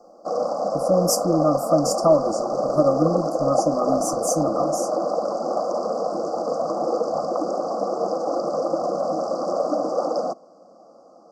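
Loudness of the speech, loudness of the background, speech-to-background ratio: -23.0 LUFS, -24.5 LUFS, 1.5 dB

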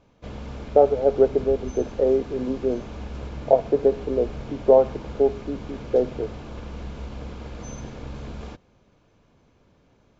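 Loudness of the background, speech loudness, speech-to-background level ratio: -37.5 LUFS, -22.0 LUFS, 15.5 dB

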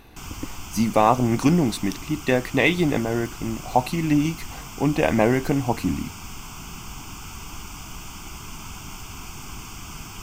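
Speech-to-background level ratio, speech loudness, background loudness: 15.0 dB, -22.5 LUFS, -37.5 LUFS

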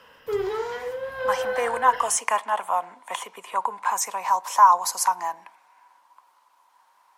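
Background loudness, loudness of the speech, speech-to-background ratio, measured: -29.5 LUFS, -23.5 LUFS, 6.0 dB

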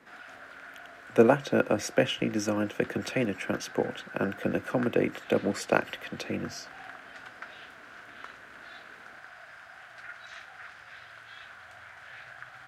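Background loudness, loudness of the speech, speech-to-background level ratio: -46.0 LUFS, -29.0 LUFS, 17.0 dB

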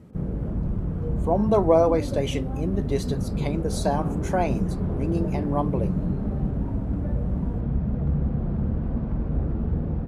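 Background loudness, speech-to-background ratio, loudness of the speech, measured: -28.0 LUFS, 2.0 dB, -26.0 LUFS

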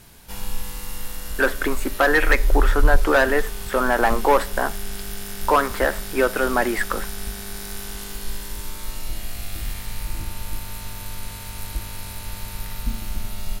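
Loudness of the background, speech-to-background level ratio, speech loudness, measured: -31.0 LUFS, 9.5 dB, -21.5 LUFS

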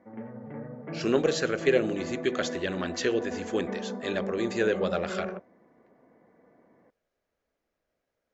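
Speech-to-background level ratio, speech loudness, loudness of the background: 8.5 dB, -29.0 LUFS, -37.5 LUFS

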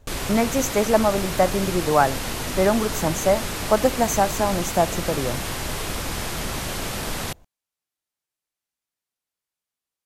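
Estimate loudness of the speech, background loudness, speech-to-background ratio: -22.5 LUFS, -28.0 LUFS, 5.5 dB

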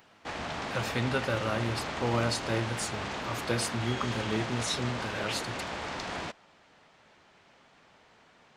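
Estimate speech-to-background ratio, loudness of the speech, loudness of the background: 2.5 dB, -33.0 LUFS, -35.5 LUFS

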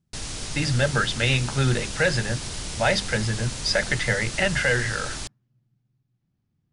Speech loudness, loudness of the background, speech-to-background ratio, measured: -24.0 LUFS, -32.0 LUFS, 8.0 dB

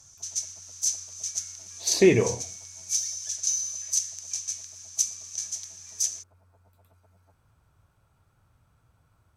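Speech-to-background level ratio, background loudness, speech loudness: 6.0 dB, -29.5 LUFS, -23.5 LUFS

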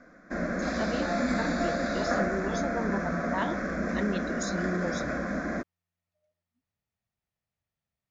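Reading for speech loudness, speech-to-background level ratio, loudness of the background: -35.0 LUFS, -4.0 dB, -31.0 LUFS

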